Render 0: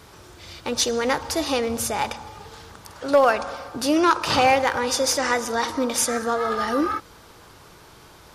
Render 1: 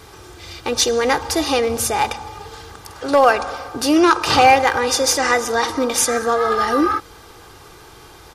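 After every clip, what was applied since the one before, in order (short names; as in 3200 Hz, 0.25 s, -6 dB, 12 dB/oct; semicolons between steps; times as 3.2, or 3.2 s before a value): comb 2.5 ms, depth 41%; gain +4.5 dB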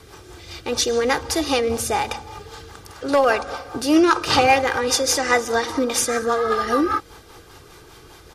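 rotary speaker horn 5 Hz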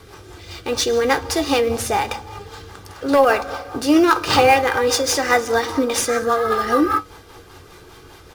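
in parallel at -9.5 dB: sample-rate reducer 12000 Hz, jitter 20%; on the sum: flange 0.45 Hz, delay 9.7 ms, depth 1.4 ms, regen +69%; gain +4 dB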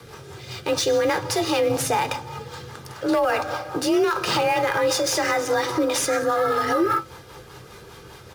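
frequency shift +36 Hz; limiter -13 dBFS, peak gain reduction 10.5 dB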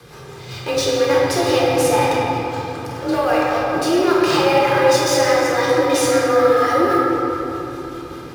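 shoebox room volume 210 m³, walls hard, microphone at 0.87 m; gain -1 dB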